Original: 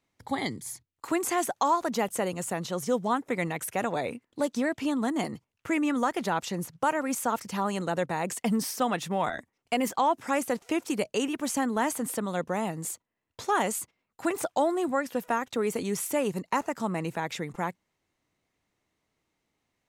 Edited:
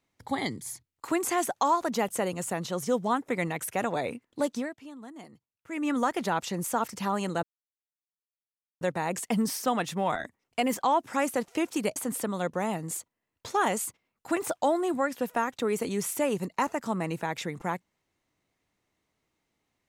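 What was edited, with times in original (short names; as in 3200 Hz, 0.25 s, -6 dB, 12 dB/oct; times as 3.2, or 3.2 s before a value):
4.5–5.92 dip -16.5 dB, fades 0.25 s
6.64–7.16 cut
7.95 insert silence 1.38 s
11.1–11.9 cut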